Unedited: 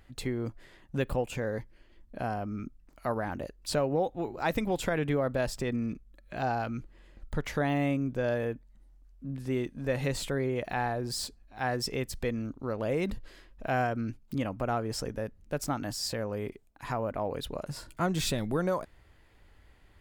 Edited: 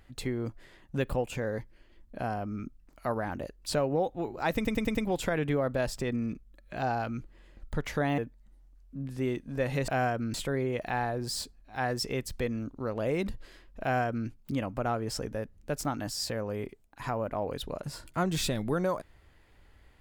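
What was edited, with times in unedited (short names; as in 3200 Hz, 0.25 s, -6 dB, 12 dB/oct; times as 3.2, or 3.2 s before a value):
4.55 stutter 0.10 s, 5 plays
7.78–8.47 cut
13.65–14.11 copy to 10.17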